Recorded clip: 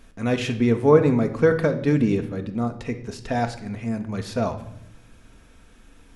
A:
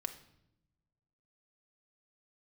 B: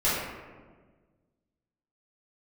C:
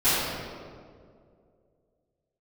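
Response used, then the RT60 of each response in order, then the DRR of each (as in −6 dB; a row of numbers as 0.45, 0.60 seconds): A; 0.80, 1.5, 2.2 seconds; 6.0, −12.0, −20.0 decibels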